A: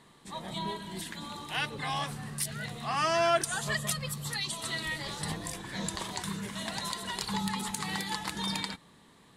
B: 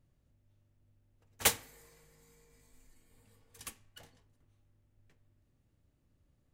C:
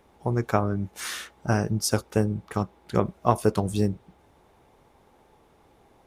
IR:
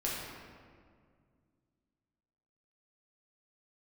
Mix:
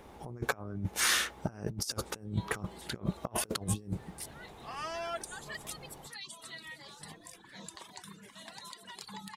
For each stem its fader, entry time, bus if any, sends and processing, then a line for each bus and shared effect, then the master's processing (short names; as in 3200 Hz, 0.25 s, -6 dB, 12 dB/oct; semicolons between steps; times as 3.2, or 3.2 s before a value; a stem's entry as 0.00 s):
-18.0 dB, 1.80 s, no send, reverb removal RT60 0.81 s; HPF 220 Hz 6 dB/oct
-15.5 dB, 2.00 s, no send, chopper 0.6 Hz, depth 60%, duty 35%
-1.0 dB, 0.00 s, no send, dry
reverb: off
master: negative-ratio compressor -34 dBFS, ratio -0.5